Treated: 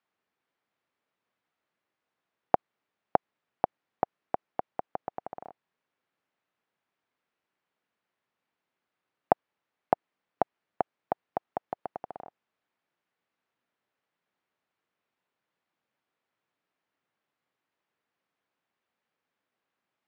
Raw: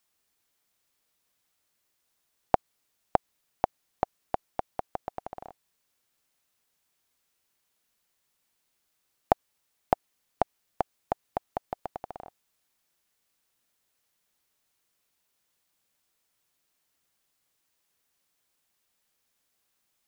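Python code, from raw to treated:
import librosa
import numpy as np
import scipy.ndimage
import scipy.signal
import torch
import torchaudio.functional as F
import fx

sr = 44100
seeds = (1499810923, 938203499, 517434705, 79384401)

y = fx.bandpass_edges(x, sr, low_hz=140.0, high_hz=2100.0)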